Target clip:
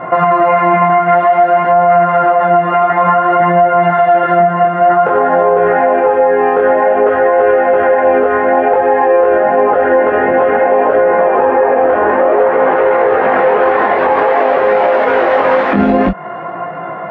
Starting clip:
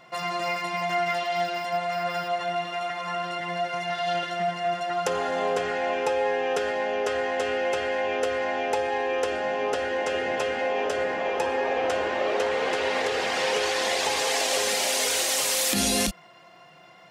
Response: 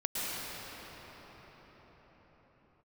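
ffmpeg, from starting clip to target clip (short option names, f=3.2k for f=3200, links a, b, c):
-af "lowpass=f=1.5k:w=0.5412,lowpass=f=1.5k:w=1.3066,lowshelf=f=100:g=-11.5,acompressor=threshold=-37dB:ratio=6,flanger=delay=17:depth=6.9:speed=0.54,aeval=exprs='0.0355*(cos(1*acos(clip(val(0)/0.0355,-1,1)))-cos(1*PI/2))+0.000447*(cos(2*acos(clip(val(0)/0.0355,-1,1)))-cos(2*PI/2))':c=same,alimiter=level_in=34.5dB:limit=-1dB:release=50:level=0:latency=1,volume=-1dB"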